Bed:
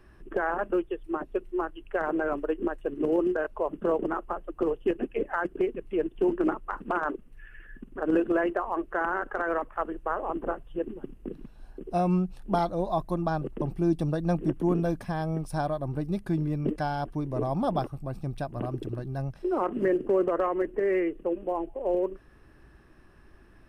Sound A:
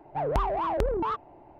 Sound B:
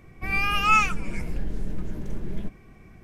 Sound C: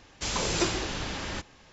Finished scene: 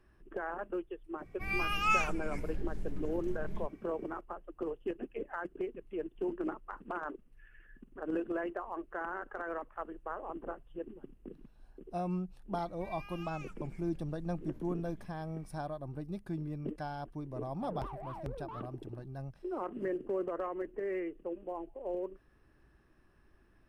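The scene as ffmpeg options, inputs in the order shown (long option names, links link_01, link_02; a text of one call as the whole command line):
ffmpeg -i bed.wav -i cue0.wav -i cue1.wav -filter_complex "[2:a]asplit=2[link_01][link_02];[0:a]volume=-10.5dB[link_03];[link_02]acompressor=threshold=-34dB:ratio=6:attack=3.2:release=140:knee=1:detection=peak[link_04];[link_01]atrim=end=3.03,asetpts=PTS-STARTPTS,volume=-9.5dB,afade=type=in:duration=0.004:curve=hsin,afade=type=out:start_time=3.026:duration=0.004:curve=hsin,adelay=1180[link_05];[link_04]atrim=end=3.03,asetpts=PTS-STARTPTS,volume=-12.5dB,afade=type=in:duration=0.004:curve=hsin,afade=type=out:start_time=3.026:duration=0.004:curve=hsin,adelay=12590[link_06];[1:a]atrim=end=1.59,asetpts=PTS-STARTPTS,volume=-17dB,afade=type=in:duration=0.004:curve=hsin,afade=type=out:start_time=1.586:duration=0.004:curve=hsin,adelay=17460[link_07];[link_03][link_05][link_06][link_07]amix=inputs=4:normalize=0" out.wav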